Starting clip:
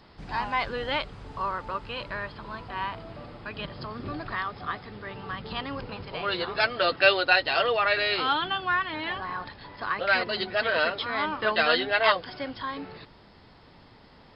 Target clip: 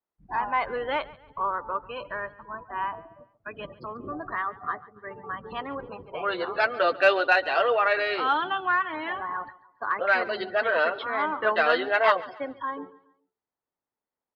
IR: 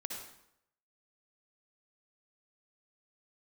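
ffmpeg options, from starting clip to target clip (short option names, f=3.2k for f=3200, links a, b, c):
-filter_complex "[0:a]agate=range=-7dB:threshold=-40dB:ratio=16:detection=peak,afftdn=nr=33:nf=-36,acrossover=split=280 2100:gain=0.224 1 0.224[a][b][c];[a][b][c]amix=inputs=3:normalize=0,asplit=2[d][e];[e]asoftclip=type=tanh:threshold=-17dB,volume=-7dB[f];[d][f]amix=inputs=2:normalize=0,aecho=1:1:140|280|420:0.1|0.039|0.0152"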